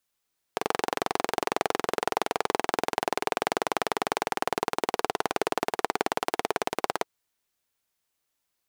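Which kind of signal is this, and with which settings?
single-cylinder engine model, changing speed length 6.50 s, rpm 2700, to 2100, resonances 440/730 Hz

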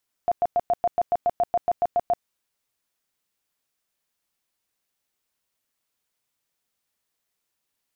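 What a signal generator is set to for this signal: tone bursts 700 Hz, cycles 25, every 0.14 s, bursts 14, -17 dBFS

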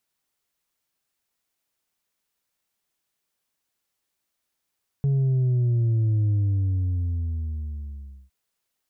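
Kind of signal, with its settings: sub drop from 140 Hz, over 3.26 s, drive 3 dB, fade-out 2.00 s, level -19 dB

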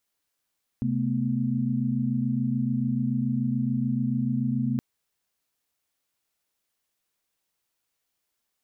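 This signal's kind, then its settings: chord C3/A3/B3 sine, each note -27.5 dBFS 3.97 s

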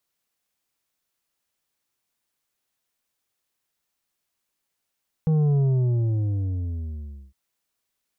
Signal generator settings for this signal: sub drop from 160 Hz, over 2.06 s, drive 7 dB, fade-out 1.75 s, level -18 dB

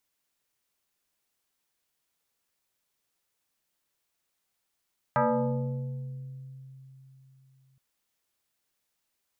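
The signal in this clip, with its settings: FM tone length 2.62 s, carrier 133 Hz, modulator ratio 2.74, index 3.6, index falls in 2.15 s exponential, decay 3.72 s, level -20 dB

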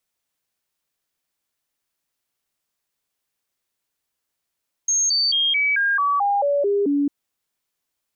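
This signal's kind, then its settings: stepped sine 6.46 kHz down, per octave 2, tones 10, 0.22 s, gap 0.00 s -16.5 dBFS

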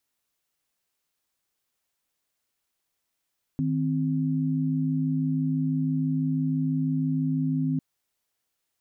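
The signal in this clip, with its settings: chord D#3/C4 sine, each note -25.5 dBFS 4.20 s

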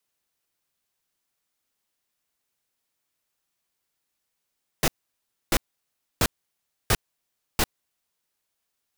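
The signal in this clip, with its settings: noise bursts pink, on 0.05 s, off 0.64 s, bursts 5, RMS -20 dBFS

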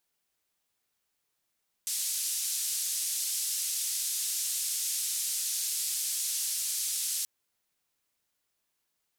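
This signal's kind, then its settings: noise band 5.2–11 kHz, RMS -32 dBFS 5.38 s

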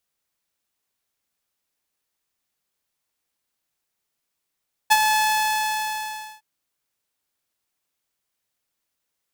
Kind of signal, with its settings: ADSR saw 862 Hz, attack 18 ms, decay 42 ms, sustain -6.5 dB, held 0.21 s, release 1300 ms -8 dBFS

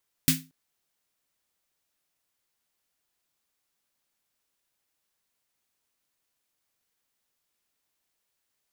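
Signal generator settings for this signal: snare drum length 0.23 s, tones 160 Hz, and 260 Hz, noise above 1.7 kHz, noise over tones 3 dB, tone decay 0.30 s, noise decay 0.23 s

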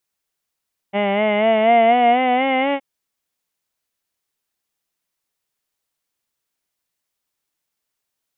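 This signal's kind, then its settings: formant vowel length 1.87 s, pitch 197 Hz, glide +6 st, vibrato 4.1 Hz, vibrato depth 0.55 st, F1 700 Hz, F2 2.1 kHz, F3 2.9 kHz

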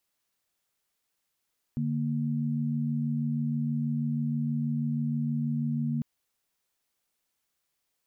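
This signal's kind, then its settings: chord D3/A#3 sine, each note -29 dBFS 4.25 s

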